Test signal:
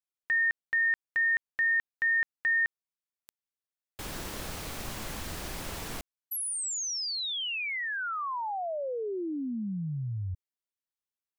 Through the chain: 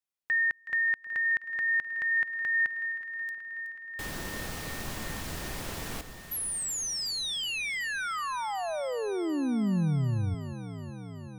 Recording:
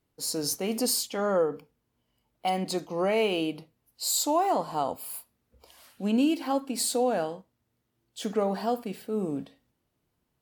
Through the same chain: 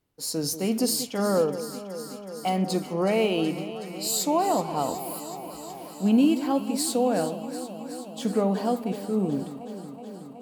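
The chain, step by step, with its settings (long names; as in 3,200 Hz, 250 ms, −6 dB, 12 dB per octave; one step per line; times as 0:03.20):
dynamic equaliser 170 Hz, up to +7 dB, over −44 dBFS, Q 0.8
on a send: delay that swaps between a low-pass and a high-pass 186 ms, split 980 Hz, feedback 87%, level −11.5 dB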